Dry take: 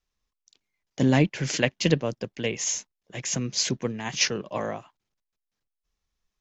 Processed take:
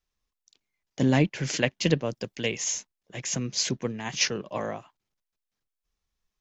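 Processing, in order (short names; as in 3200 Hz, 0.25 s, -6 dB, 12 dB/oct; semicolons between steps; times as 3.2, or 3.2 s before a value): 2.15–2.58 high shelf 3500 Hz +9 dB; gain -1.5 dB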